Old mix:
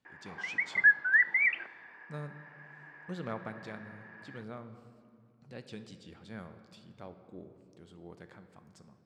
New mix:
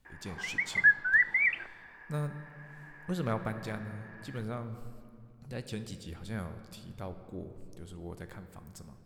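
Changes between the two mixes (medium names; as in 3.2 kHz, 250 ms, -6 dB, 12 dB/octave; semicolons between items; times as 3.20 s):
speech +5.0 dB; master: remove band-pass 150–5600 Hz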